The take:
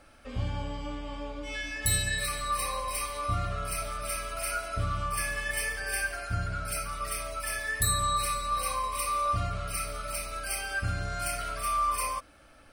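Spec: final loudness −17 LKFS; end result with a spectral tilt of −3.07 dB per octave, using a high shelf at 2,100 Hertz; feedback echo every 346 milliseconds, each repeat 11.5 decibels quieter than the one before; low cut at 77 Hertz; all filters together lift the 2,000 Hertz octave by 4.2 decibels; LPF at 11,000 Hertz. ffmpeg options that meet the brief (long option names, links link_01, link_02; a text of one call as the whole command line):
ffmpeg -i in.wav -af "highpass=77,lowpass=11000,equalizer=frequency=2000:width_type=o:gain=8,highshelf=frequency=2100:gain=-5,aecho=1:1:346|692|1038:0.266|0.0718|0.0194,volume=13dB" out.wav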